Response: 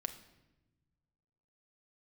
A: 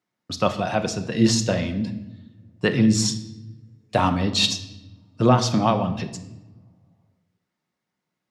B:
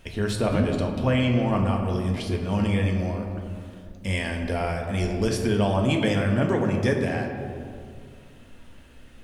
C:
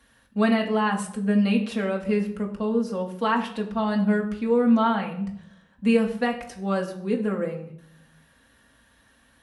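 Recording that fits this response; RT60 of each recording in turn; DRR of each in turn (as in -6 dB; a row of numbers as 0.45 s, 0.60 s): A; 1.0 s, 2.2 s, 0.70 s; 7.0 dB, 1.5 dB, 0.0 dB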